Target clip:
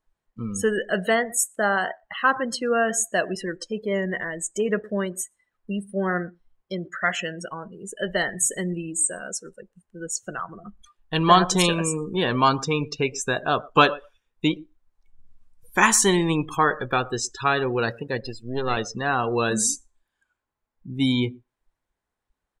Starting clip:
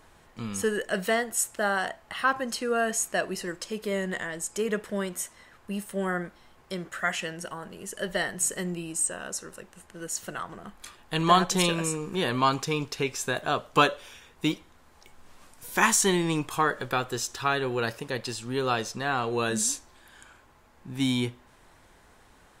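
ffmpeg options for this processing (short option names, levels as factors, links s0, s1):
-filter_complex "[0:a]asettb=1/sr,asplit=3[s0][s1][s2];[s0]atrim=end=18.224[s3];[s1]atrim=start=18.22:end=18.77,asetpts=PTS-STARTPTS,afade=t=in:d=0.004:c=qsin,afade=t=out:st=0.546:d=0.004:c=qsin,aeval=exprs='if(lt(val(0),0),0.251*val(0),val(0))':c=same[s4];[s2]atrim=start=18.766[s5];[s3][s4]acrossfade=d=0.004:c1=hsin:c2=qsin[s6];[s6][s5]acrossfade=d=0.004:c1=qsin:c2=hsin,asplit=2[s7][s8];[s8]adelay=120,lowpass=f=4400:p=1,volume=0.106,asplit=2[s9][s10];[s10]adelay=120,lowpass=f=4400:p=1,volume=0.17[s11];[s9][s11]amix=inputs=2:normalize=0[s12];[s7][s12]amix=inputs=2:normalize=0,afftdn=nr=32:nf=-36,volume=1.68"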